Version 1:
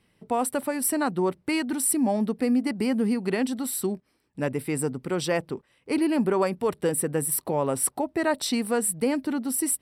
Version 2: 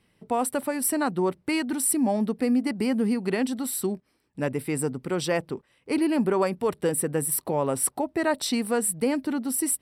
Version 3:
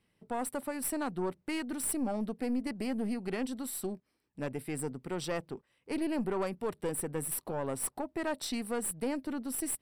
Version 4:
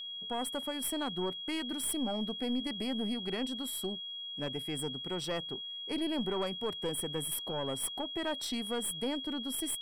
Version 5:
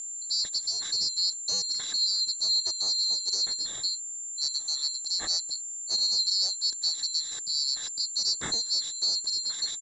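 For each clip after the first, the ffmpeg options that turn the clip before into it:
-af anull
-af "aeval=exprs='(tanh(7.94*val(0)+0.45)-tanh(0.45))/7.94':c=same,volume=0.447"
-af "aeval=exprs='val(0)+0.0126*sin(2*PI*3300*n/s)':c=same,volume=0.841"
-af "afftfilt=real='real(if(lt(b,736),b+184*(1-2*mod(floor(b/184),2)),b),0)':imag='imag(if(lt(b,736),b+184*(1-2*mod(floor(b/184),2)),b),0)':win_size=2048:overlap=0.75,aresample=16000,aresample=44100,volume=2.24"

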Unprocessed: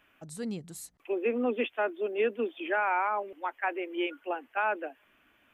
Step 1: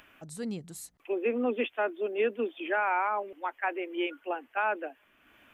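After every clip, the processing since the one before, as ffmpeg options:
-af "acompressor=mode=upward:threshold=0.00282:ratio=2.5"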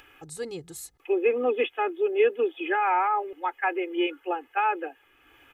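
-af "aecho=1:1:2.4:0.91,volume=1.19"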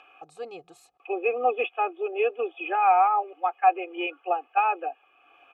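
-filter_complex "[0:a]asplit=3[s0][s1][s2];[s0]bandpass=f=730:t=q:w=8,volume=1[s3];[s1]bandpass=f=1090:t=q:w=8,volume=0.501[s4];[s2]bandpass=f=2440:t=q:w=8,volume=0.355[s5];[s3][s4][s5]amix=inputs=3:normalize=0,acontrast=85,volume=1.78"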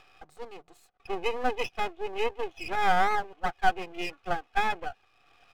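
-af "aeval=exprs='max(val(0),0)':c=same"

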